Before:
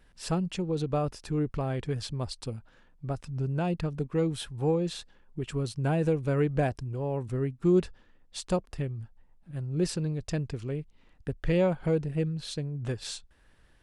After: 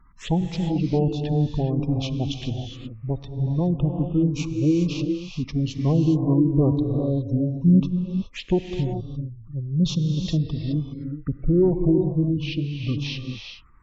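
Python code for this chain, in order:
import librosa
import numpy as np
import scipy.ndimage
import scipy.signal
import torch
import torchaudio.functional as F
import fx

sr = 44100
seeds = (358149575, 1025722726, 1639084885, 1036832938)

y = fx.formant_shift(x, sr, semitones=-6)
y = fx.env_phaser(y, sr, low_hz=540.0, high_hz=1800.0, full_db=-30.5)
y = fx.spec_gate(y, sr, threshold_db=-30, keep='strong')
y = fx.rev_gated(y, sr, seeds[0], gate_ms=440, shape='rising', drr_db=4.5)
y = y * 10.0 ** (7.0 / 20.0)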